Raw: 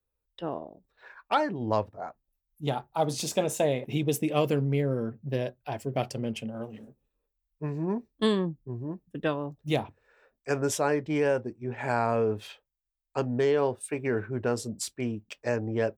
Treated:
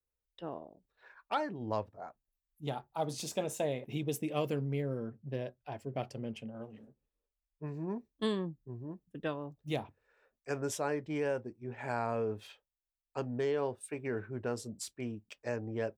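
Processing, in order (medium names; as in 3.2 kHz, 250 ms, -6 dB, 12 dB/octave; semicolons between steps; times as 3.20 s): 4.98–7.67 s: treble shelf 5.4 kHz -9.5 dB; trim -8 dB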